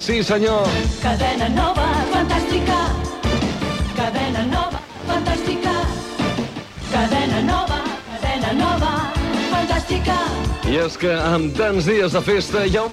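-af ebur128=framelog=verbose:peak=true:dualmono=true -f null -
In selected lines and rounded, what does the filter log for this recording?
Integrated loudness:
  I:         -16.7 LUFS
  Threshold: -26.7 LUFS
Loudness range:
  LRA:         2.6 LU
  Threshold: -37.2 LUFS
  LRA low:   -18.5 LUFS
  LRA high:  -15.8 LUFS
True peak:
  Peak:       -6.9 dBFS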